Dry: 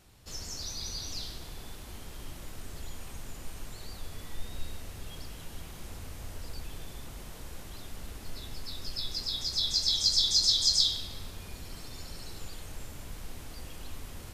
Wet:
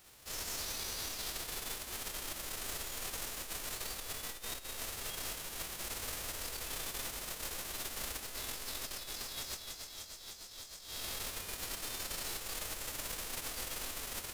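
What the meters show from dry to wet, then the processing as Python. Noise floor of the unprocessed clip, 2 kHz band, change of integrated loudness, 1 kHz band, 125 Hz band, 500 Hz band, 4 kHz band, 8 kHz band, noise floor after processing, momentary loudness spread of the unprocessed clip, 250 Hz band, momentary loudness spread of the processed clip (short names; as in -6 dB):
-45 dBFS, +6.0 dB, -12.0 dB, +4.0 dB, -9.0 dB, +1.5 dB, -11.5 dB, -1.5 dB, -51 dBFS, 22 LU, -4.5 dB, 4 LU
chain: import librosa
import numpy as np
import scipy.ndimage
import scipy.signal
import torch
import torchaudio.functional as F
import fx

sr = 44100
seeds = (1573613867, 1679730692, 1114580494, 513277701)

y = fx.envelope_flatten(x, sr, power=0.3)
y = fx.over_compress(y, sr, threshold_db=-38.0, ratio=-1.0)
y = y * 10.0 ** (-4.5 / 20.0)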